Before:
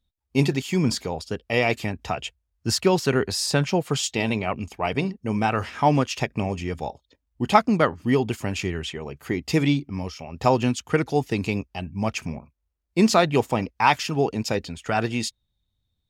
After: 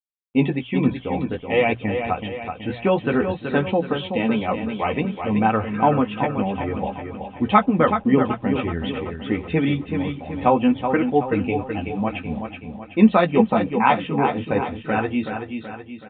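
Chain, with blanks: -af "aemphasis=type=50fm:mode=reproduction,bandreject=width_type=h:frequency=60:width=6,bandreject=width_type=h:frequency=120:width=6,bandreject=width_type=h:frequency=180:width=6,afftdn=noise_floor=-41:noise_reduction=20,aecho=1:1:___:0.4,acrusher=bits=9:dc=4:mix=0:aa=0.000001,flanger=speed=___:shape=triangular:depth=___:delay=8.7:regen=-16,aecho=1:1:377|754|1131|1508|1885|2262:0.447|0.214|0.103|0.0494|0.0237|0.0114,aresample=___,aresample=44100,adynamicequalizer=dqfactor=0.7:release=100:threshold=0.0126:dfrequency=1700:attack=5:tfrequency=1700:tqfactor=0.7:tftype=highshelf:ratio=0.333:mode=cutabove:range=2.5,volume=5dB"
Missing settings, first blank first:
3.9, 0.54, 7, 8000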